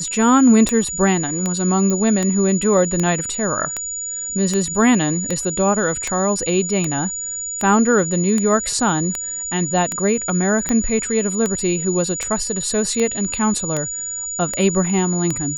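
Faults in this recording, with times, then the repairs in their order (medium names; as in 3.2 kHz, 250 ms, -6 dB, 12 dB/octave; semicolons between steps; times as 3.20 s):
tick 78 rpm -7 dBFS
whine 6.9 kHz -24 dBFS
1.90 s: pop -10 dBFS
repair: de-click; band-stop 6.9 kHz, Q 30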